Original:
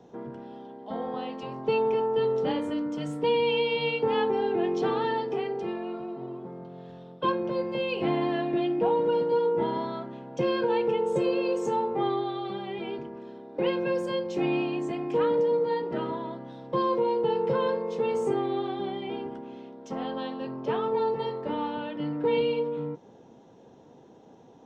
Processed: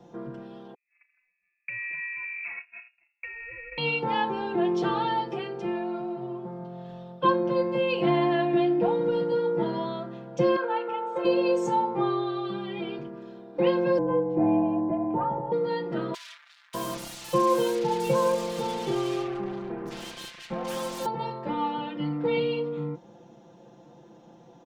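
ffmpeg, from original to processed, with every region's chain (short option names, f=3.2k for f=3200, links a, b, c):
-filter_complex "[0:a]asettb=1/sr,asplit=3[a][b][c];[a]atrim=end=0.744[d];[b]atrim=start=0.74:end=3.78,asetpts=PTS-STARTPTS,afade=t=in:d=0.004:c=qsin,afade=t=out:st=3.036:d=0.004:c=qsin,agate=range=-43dB:threshold=-28dB:ratio=16:release=100:detection=peak,acompressor=threshold=-31dB:ratio=10:attack=3.2:release=140:knee=1:detection=peak,lowpass=f=2.4k:t=q:w=0.5098,lowpass=f=2.4k:t=q:w=0.6013,lowpass=f=2.4k:t=q:w=0.9,lowpass=f=2.4k:t=q:w=2.563,afreqshift=-2800[e];[c]atrim=start=3.776[f];[d][e]acrossfade=d=0.004:c1=hsin:c2=qsin[g];[g][f]acrossfade=d=0.004:c1=qsin:c2=hsin,asettb=1/sr,asplit=3[h][i][j];[h]atrim=end=10.564[k];[i]atrim=start=10.56:end=11.25,asetpts=PTS-STARTPTS,afade=t=in:d=0.004:c=qsin,afade=t=out:st=0.686:d=0.004:c=qsin,highpass=600,lowpass=2.5k,equalizer=f=1.3k:w=5.5:g=9.5[l];[j]atrim=start=11.246[m];[k][l]acrossfade=d=0.004:c1=hsin:c2=qsin[n];[n][m]acrossfade=d=0.004:c1=qsin:c2=hsin,asettb=1/sr,asplit=3[o][p][q];[o]atrim=end=13.984[r];[p]atrim=start=13.98:end=15.52,asetpts=PTS-STARTPTS,afade=t=in:d=0.004:c=qsin,afade=t=out:st=1.536:d=0.004:c=qsin,afreqshift=-39,lowpass=f=800:t=q:w=1.8[s];[q]atrim=start=15.516[t];[r][s]acrossfade=d=0.004:c1=hsin:c2=qsin[u];[u][t]acrossfade=d=0.004:c1=qsin:c2=hsin,asettb=1/sr,asplit=3[v][w][x];[v]atrim=end=16.144[y];[w]atrim=start=16.14:end=21.06,asetpts=PTS-STARTPTS,afade=t=in:d=0.004:c=qsin,afade=t=out:st=4.916:d=0.004:c=qsin,acrusher=bits=5:mix=0:aa=0.5,acrossover=split=1600[z][aa];[z]adelay=600[ab];[ab][aa]amix=inputs=2:normalize=0,atrim=end_sample=216972[ac];[x]atrim=start=21.056[ad];[y][ac]acrossfade=d=0.004:c1=hsin:c2=qsin[ae];[ae][ad]acrossfade=d=0.004:c1=qsin:c2=hsin,equalizer=f=420:w=6.1:g=-8.5,aecho=1:1:5.8:0.89"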